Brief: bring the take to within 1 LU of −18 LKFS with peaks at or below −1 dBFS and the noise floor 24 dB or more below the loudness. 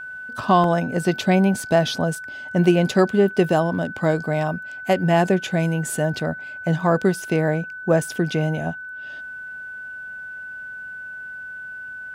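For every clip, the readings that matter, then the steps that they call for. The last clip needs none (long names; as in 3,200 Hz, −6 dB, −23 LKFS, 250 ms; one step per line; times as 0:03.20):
number of dropouts 1; longest dropout 1.6 ms; interfering tone 1,500 Hz; level of the tone −32 dBFS; integrated loudness −21.0 LKFS; sample peak −4.5 dBFS; target loudness −18.0 LKFS
→ repair the gap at 0:00.64, 1.6 ms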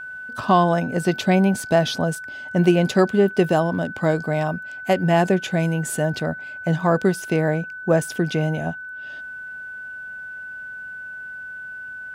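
number of dropouts 0; interfering tone 1,500 Hz; level of the tone −32 dBFS
→ notch filter 1,500 Hz, Q 30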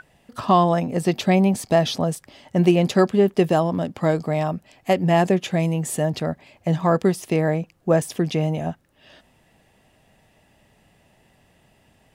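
interfering tone none found; integrated loudness −21.0 LKFS; sample peak −5.0 dBFS; target loudness −18.0 LKFS
→ level +3 dB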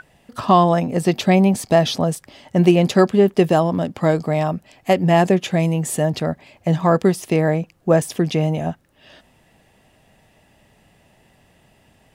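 integrated loudness −18.0 LKFS; sample peak −2.0 dBFS; background noise floor −57 dBFS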